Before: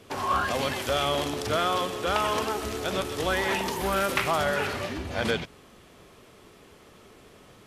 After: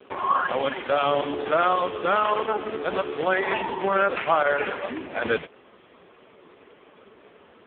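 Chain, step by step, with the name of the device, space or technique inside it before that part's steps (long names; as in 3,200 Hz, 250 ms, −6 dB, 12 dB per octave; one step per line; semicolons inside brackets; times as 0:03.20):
telephone (band-pass filter 260–3,200 Hz; level +6.5 dB; AMR narrowband 4.75 kbit/s 8,000 Hz)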